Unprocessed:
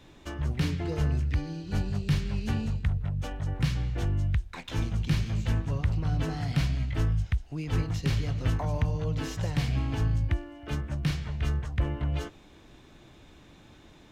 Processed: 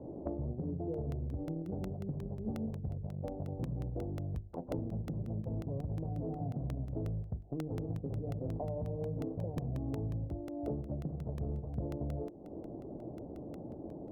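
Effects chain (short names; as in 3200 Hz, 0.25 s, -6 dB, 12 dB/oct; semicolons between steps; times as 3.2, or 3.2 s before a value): HPF 260 Hz 6 dB/oct; in parallel at -10 dB: bit-crush 6-bit; on the sum: steep low-pass 670 Hz 36 dB/oct; limiter -27 dBFS, peak gain reduction 8 dB; compressor 10:1, threshold -49 dBFS, peak gain reduction 18.5 dB; notches 50/100/150/200/250/300/350/400 Hz; crackling interface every 0.18 s, samples 64, repeat, from 0.94; gain +15 dB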